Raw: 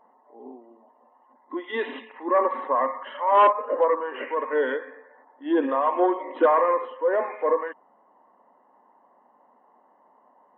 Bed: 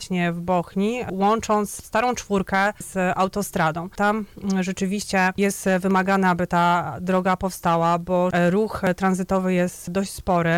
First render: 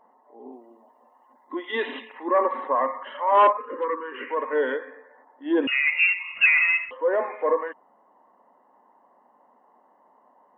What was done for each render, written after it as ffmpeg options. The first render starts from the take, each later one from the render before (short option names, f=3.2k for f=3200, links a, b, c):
-filter_complex "[0:a]asettb=1/sr,asplit=3[a][b][c];[a]atrim=end=0.524[d];[b]atrim=start=0.52:end=2.29,asetpts=PTS-STARTPTS,afade=t=in:d=0.004:c=qsin,afade=t=out:st=1.766:d=0.004:c=qsin,highshelf=f=2.8k:g=8[e];[c]atrim=start=2.286[f];[d][e]acrossfade=d=0.004:c1=hsin:c2=qsin[g];[g][f]acrossfade=d=0.004:c1=qsin:c2=hsin,asettb=1/sr,asplit=3[h][i][j];[h]atrim=end=3.574[k];[i]atrim=start=3.57:end=4.3,asetpts=PTS-STARTPTS,afade=t=in:d=0.004:c=qsin,afade=t=out:st=0.726:d=0.004:c=qsin,asuperstop=centerf=690:order=4:qfactor=1.1[l];[j]atrim=start=4.296[m];[k][l]acrossfade=d=0.004:c1=hsin:c2=qsin[n];[n][m]acrossfade=d=0.004:c1=qsin:c2=hsin,asettb=1/sr,asplit=3[o][p][q];[o]atrim=end=5.674[r];[p]atrim=start=5.67:end=6.91,asetpts=PTS-STARTPTS,afade=t=in:d=0.004:c=qsin,afade=t=out:st=1.236:d=0.004:c=qsin,lowpass=f=2.6k:t=q:w=0.5098,lowpass=f=2.6k:t=q:w=0.6013,lowpass=f=2.6k:t=q:w=0.9,lowpass=f=2.6k:t=q:w=2.563,afreqshift=-3100[s];[q]atrim=start=6.906[t];[r][s]acrossfade=d=0.004:c1=hsin:c2=qsin[u];[u][t]acrossfade=d=0.004:c1=qsin:c2=hsin"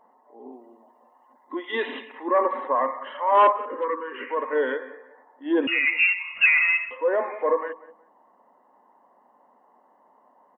-filter_complex "[0:a]asplit=2[a][b];[b]adelay=183,lowpass=f=1.9k:p=1,volume=-17dB,asplit=2[c][d];[d]adelay=183,lowpass=f=1.9k:p=1,volume=0.26[e];[a][c][e]amix=inputs=3:normalize=0"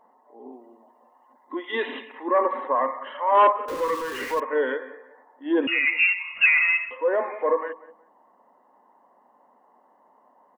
-filter_complex "[0:a]asettb=1/sr,asplit=3[a][b][c];[a]atrim=end=3.684[d];[b]atrim=start=3.68:end=4.4,asetpts=PTS-STARTPTS,afade=t=in:d=0.004:c=qsin,afade=t=out:st=0.716:d=0.004:c=qsin,aeval=exprs='val(0)+0.5*0.0251*sgn(val(0))':c=same[e];[c]atrim=start=4.396[f];[d][e]acrossfade=d=0.004:c1=hsin:c2=qsin[g];[g][f]acrossfade=d=0.004:c1=qsin:c2=hsin"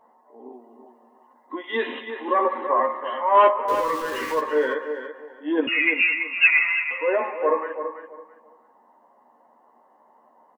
-filter_complex "[0:a]asplit=2[a][b];[b]adelay=13,volume=-4.5dB[c];[a][c]amix=inputs=2:normalize=0,asplit=2[d][e];[e]adelay=333,lowpass=f=4.6k:p=1,volume=-9dB,asplit=2[f][g];[g]adelay=333,lowpass=f=4.6k:p=1,volume=0.23,asplit=2[h][i];[i]adelay=333,lowpass=f=4.6k:p=1,volume=0.23[j];[d][f][h][j]amix=inputs=4:normalize=0"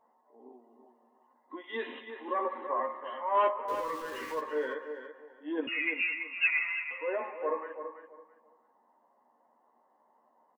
-af "volume=-11dB"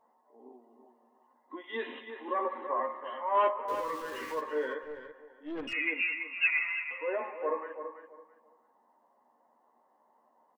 -filter_complex "[0:a]asettb=1/sr,asplit=3[a][b][c];[a]atrim=end=4.834[d];[b]atrim=start=4.83:end=5.73,asetpts=PTS-STARTPTS,afade=t=in:d=0.004:c=qsin,afade=t=out:st=0.896:d=0.004:c=qsin,aeval=exprs='(tanh(44.7*val(0)+0.4)-tanh(0.4))/44.7':c=same[e];[c]atrim=start=5.726[f];[d][e]acrossfade=d=0.004:c1=hsin:c2=qsin[g];[g][f]acrossfade=d=0.004:c1=qsin:c2=hsin"